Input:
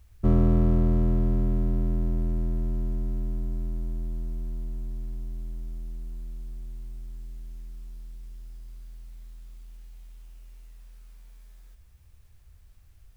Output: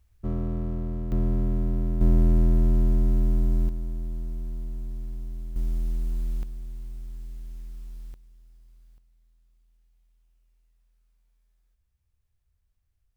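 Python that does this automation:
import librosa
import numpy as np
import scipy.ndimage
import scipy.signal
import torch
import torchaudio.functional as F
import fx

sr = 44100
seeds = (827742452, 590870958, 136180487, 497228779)

y = fx.gain(x, sr, db=fx.steps((0.0, -8.5), (1.12, -0.5), (2.01, 7.5), (3.69, 0.0), (5.56, 9.0), (6.43, 1.5), (8.14, -11.0), (8.98, -19.0)))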